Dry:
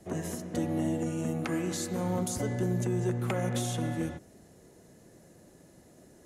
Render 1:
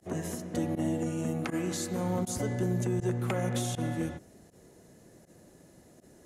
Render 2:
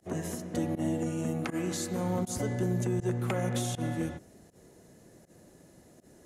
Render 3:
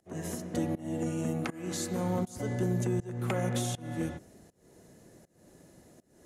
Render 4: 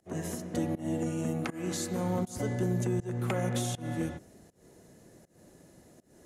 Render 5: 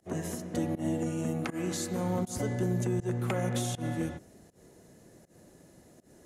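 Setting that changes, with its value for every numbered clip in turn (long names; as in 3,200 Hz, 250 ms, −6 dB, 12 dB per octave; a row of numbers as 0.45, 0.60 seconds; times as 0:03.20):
fake sidechain pumping, release: 61, 91, 354, 241, 147 milliseconds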